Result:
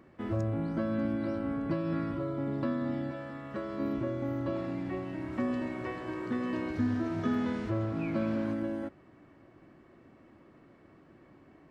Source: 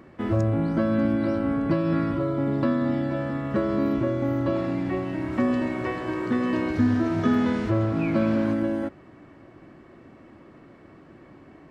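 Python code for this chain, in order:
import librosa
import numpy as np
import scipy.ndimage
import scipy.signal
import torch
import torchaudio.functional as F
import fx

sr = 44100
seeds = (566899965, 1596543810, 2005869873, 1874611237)

y = fx.low_shelf(x, sr, hz=480.0, db=-7.5, at=(3.11, 3.8))
y = F.gain(torch.from_numpy(y), -8.5).numpy()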